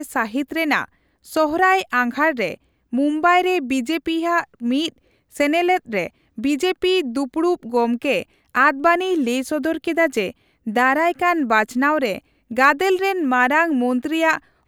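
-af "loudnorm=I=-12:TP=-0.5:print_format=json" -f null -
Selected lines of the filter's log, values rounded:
"input_i" : "-19.3",
"input_tp" : "-2.2",
"input_lra" : "2.4",
"input_thresh" : "-29.5",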